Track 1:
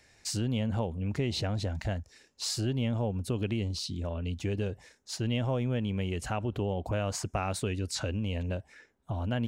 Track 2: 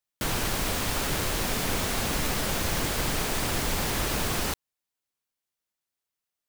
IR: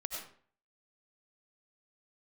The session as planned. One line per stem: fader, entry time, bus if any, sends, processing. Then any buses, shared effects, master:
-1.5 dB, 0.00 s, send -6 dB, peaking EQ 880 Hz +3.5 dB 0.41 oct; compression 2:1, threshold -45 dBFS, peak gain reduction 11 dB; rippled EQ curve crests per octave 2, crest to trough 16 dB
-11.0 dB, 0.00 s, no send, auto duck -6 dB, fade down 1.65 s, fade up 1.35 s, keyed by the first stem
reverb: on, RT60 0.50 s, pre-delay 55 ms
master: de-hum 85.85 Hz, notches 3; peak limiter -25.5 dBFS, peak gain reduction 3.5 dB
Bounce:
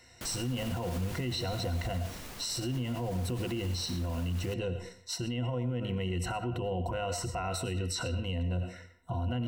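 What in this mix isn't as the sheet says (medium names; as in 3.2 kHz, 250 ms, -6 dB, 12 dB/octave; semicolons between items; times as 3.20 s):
stem 1: missing compression 2:1, threshold -45 dBFS, peak gain reduction 11 dB; master: missing de-hum 85.85 Hz, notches 3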